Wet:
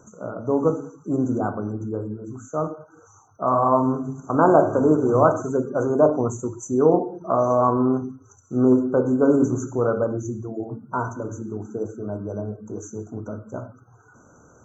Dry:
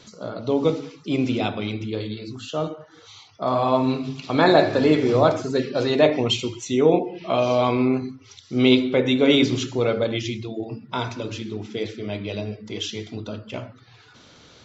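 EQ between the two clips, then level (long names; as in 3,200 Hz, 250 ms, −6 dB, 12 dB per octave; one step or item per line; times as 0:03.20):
dynamic equaliser 1,100 Hz, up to +6 dB, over −39 dBFS, Q 3.3
linear-phase brick-wall band-stop 1,600–5,900 Hz
0.0 dB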